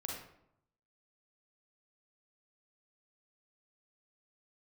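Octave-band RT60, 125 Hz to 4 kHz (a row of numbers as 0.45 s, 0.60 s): 1.0 s, 0.85 s, 0.75 s, 0.75 s, 0.55 s, 0.45 s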